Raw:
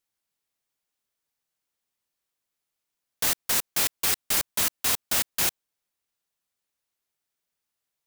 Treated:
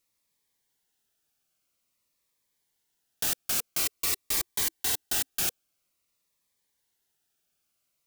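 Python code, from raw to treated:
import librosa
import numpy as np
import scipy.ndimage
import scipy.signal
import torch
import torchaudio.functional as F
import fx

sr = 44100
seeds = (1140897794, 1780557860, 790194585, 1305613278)

p1 = fx.comb(x, sr, ms=2.6, depth=0.42, at=(3.78, 5.41))
p2 = fx.over_compress(p1, sr, threshold_db=-30.0, ratio=-0.5)
p3 = p1 + (p2 * librosa.db_to_amplitude(0.0))
p4 = fx.notch_cascade(p3, sr, direction='falling', hz=0.49)
y = p4 * librosa.db_to_amplitude(-6.0)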